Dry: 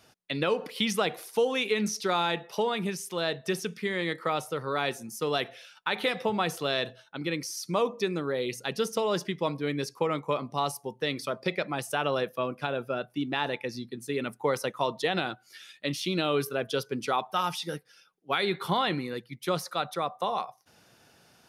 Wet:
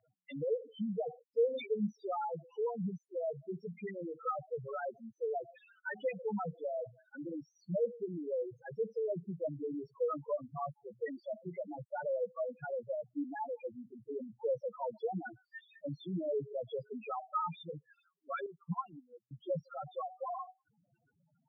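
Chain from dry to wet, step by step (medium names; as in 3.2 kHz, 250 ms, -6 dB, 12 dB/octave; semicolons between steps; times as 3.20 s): loudest bins only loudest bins 2; cabinet simulation 120–3000 Hz, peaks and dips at 250 Hz -7 dB, 380 Hz -9 dB, 800 Hz -6 dB, 1.8 kHz +7 dB; 18.46–19.31 s: upward expansion 2.5:1, over -51 dBFS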